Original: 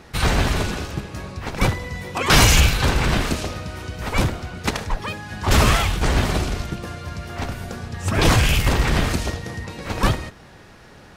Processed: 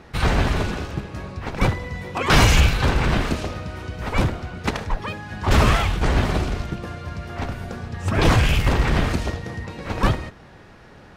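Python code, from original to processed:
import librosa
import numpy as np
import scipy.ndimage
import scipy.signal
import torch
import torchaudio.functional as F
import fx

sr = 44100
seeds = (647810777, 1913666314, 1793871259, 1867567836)

y = fx.high_shelf(x, sr, hz=4600.0, db=-10.5)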